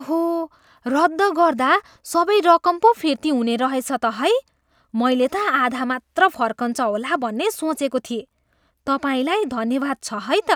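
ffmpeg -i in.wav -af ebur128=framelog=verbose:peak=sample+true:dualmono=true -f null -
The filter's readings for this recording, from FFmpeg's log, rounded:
Integrated loudness:
  I:         -17.0 LUFS
  Threshold: -27.4 LUFS
Loudness range:
  LRA:         5.0 LU
  Threshold: -37.2 LUFS
  LRA low:   -20.1 LUFS
  LRA high:  -15.2 LUFS
Sample peak:
  Peak:       -1.2 dBFS
True peak:
  Peak:       -1.1 dBFS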